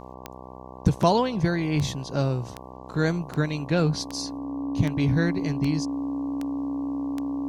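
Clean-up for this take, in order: de-click; de-hum 63.6 Hz, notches 18; notch 280 Hz, Q 30

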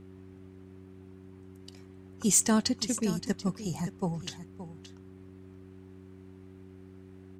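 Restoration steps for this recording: clip repair -15.5 dBFS; de-hum 94.2 Hz, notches 4; inverse comb 0.572 s -13 dB

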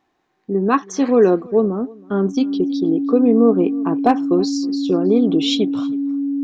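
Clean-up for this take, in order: clip repair -3.5 dBFS; notch 280 Hz, Q 30; inverse comb 0.321 s -23.5 dB

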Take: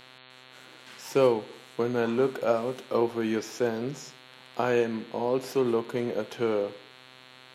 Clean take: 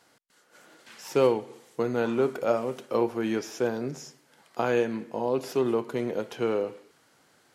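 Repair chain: de-hum 128.2 Hz, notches 34

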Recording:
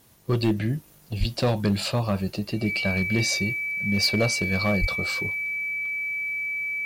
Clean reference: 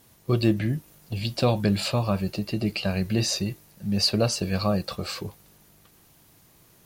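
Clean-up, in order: clip repair -15 dBFS; notch 2300 Hz, Q 30; de-plosive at 1.19/4.8

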